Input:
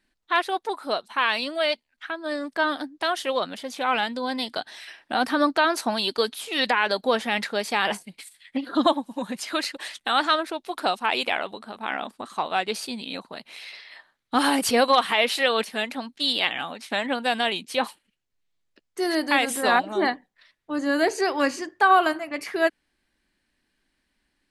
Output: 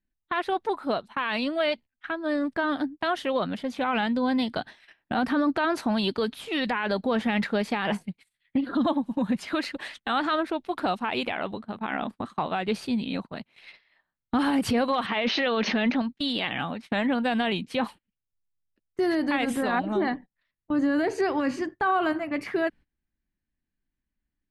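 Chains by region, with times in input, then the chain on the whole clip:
15.06–16.02 brick-wall FIR band-pass 180–6600 Hz + sustainer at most 23 dB/s
whole clip: gate -39 dBFS, range -19 dB; tone controls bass +15 dB, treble -12 dB; limiter -17 dBFS

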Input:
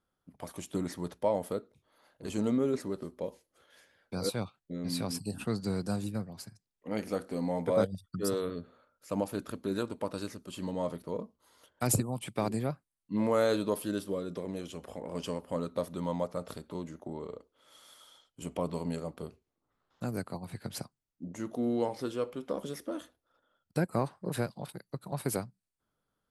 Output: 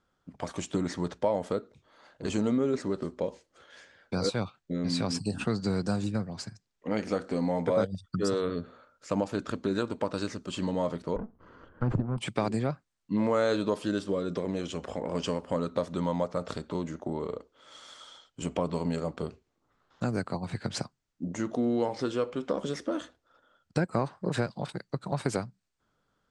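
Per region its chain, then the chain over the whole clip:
11.16–12.18 minimum comb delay 0.65 ms + Bessel low-pass 750 Hz + upward compressor, threshold -48 dBFS
whole clip: steep low-pass 7900 Hz 36 dB/oct; bell 1500 Hz +2.5 dB; compressor 2:1, threshold -35 dBFS; gain +7.5 dB

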